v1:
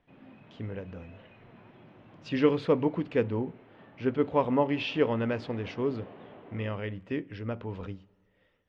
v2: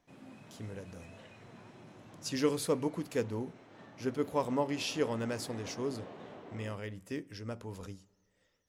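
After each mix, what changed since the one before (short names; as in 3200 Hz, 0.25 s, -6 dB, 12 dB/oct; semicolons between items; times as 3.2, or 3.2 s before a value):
speech -6.5 dB; master: remove Chebyshev low-pass 3000 Hz, order 3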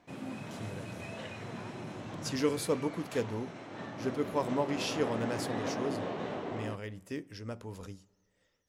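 background +11.5 dB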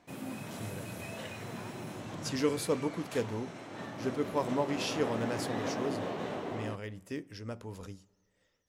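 background: remove air absorption 64 m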